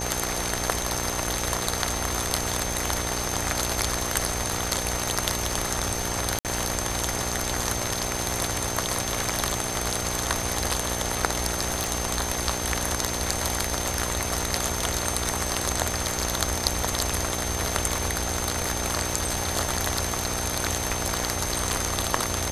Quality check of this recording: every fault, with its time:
buzz 60 Hz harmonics 15 -33 dBFS
crackle 10/s -34 dBFS
tone 6300 Hz -33 dBFS
6.39–6.45 gap 58 ms
11.84 pop

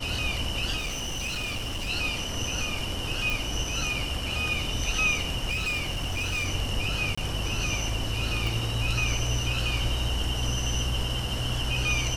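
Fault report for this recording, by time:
0.77–1.9 clipped -28 dBFS
3.3 pop
5.5–6.48 clipped -25 dBFS
7.15–7.17 gap 25 ms
8.47 pop

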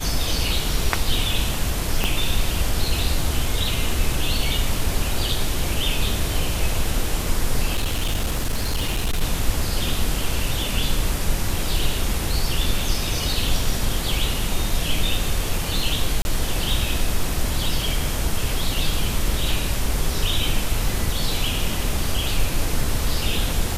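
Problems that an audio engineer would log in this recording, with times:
2.04 pop -6 dBFS
7.75–9.22 clipped -17.5 dBFS
16.22–16.25 gap 31 ms

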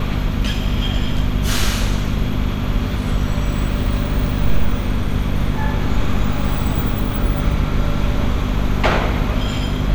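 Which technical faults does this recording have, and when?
hum 50 Hz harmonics 5 -22 dBFS

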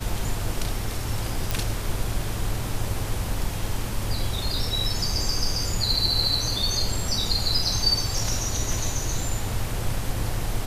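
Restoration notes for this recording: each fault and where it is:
1.51 pop

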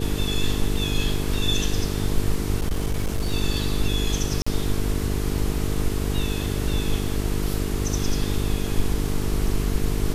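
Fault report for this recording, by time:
buzz 50 Hz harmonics 9 -27 dBFS
2.58–3.31 clipped -19 dBFS
4.42–4.46 gap 45 ms

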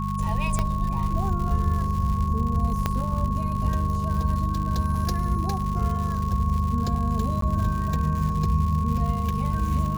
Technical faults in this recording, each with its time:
crackle 190/s -31 dBFS
hum 50 Hz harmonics 4 -28 dBFS
tone 1100 Hz -30 dBFS
0.59 pop -11 dBFS
2.86 pop -10 dBFS
7.41–7.42 gap 13 ms

